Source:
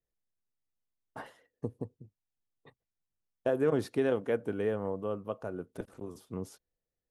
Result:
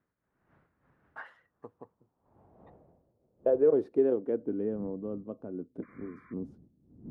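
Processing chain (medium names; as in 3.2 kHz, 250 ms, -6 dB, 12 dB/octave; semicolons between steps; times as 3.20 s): wind noise 120 Hz -48 dBFS; painted sound noise, 5.82–6.34 s, 1–2.4 kHz -43 dBFS; band-pass sweep 1.6 kHz -> 260 Hz, 1.12–4.70 s; trim +6 dB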